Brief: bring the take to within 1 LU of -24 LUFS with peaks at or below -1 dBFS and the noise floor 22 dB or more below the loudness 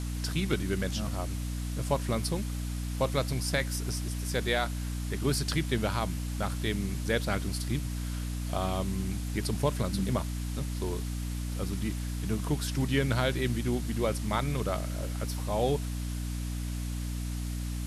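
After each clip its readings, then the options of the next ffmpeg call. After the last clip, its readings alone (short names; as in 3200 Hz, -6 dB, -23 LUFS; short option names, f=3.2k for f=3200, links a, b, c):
hum 60 Hz; harmonics up to 300 Hz; hum level -31 dBFS; noise floor -34 dBFS; noise floor target -54 dBFS; loudness -32.0 LUFS; peak -13.5 dBFS; loudness target -24.0 LUFS
-> -af "bandreject=f=60:t=h:w=4,bandreject=f=120:t=h:w=4,bandreject=f=180:t=h:w=4,bandreject=f=240:t=h:w=4,bandreject=f=300:t=h:w=4"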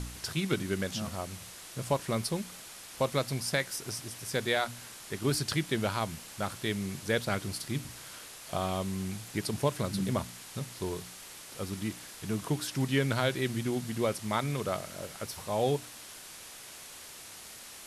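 hum none; noise floor -48 dBFS; noise floor target -55 dBFS
-> -af "afftdn=nr=7:nf=-48"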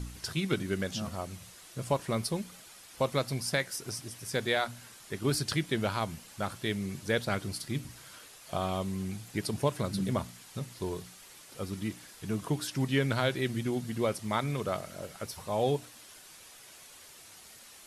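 noise floor -53 dBFS; noise floor target -55 dBFS
-> -af "afftdn=nr=6:nf=-53"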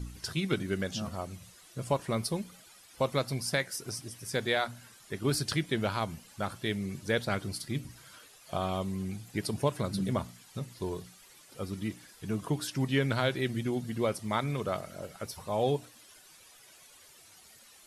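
noise floor -57 dBFS; loudness -33.5 LUFS; peak -14.5 dBFS; loudness target -24.0 LUFS
-> -af "volume=9.5dB"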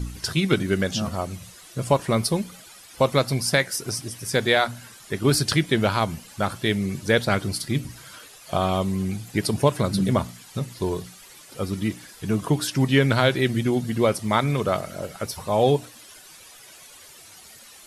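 loudness -24.0 LUFS; peak -5.0 dBFS; noise floor -47 dBFS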